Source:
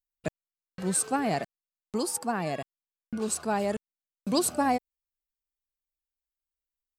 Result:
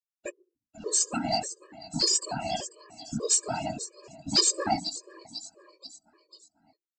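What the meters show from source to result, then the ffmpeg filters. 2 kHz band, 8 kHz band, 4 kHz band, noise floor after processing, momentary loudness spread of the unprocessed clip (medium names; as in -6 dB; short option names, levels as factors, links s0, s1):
-3.0 dB, +6.0 dB, +12.0 dB, under -85 dBFS, 13 LU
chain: -filter_complex "[0:a]afftdn=nr=31:nf=-38,bandreject=f=60:t=h:w=6,bandreject=f=120:t=h:w=6,bandreject=f=180:t=h:w=6,bandreject=f=240:t=h:w=6,bandreject=f=300:t=h:w=6,bandreject=f=360:t=h:w=6,bandreject=f=420:t=h:w=6,aecho=1:1:3:0.54,asplit=2[s0][s1];[s1]acompressor=threshold=0.0224:ratio=20,volume=1[s2];[s0][s2]amix=inputs=2:normalize=0,aecho=1:1:492|984|1476|1968:0.126|0.0604|0.029|0.0139,flanger=delay=15:depth=4.9:speed=2.7,aexciter=amount=7.8:drive=9:freq=3000,aresample=16000,asoftclip=type=tanh:threshold=0.251,aresample=44100,afftfilt=real='hypot(re,im)*cos(2*PI*random(0))':imag='hypot(re,im)*sin(2*PI*random(1))':win_size=512:overlap=0.75,afftfilt=real='re*gt(sin(2*PI*1.7*pts/sr)*(1-2*mod(floor(b*sr/1024/320),2)),0)':imag='im*gt(sin(2*PI*1.7*pts/sr)*(1-2*mod(floor(b*sr/1024/320),2)),0)':win_size=1024:overlap=0.75,volume=1.88"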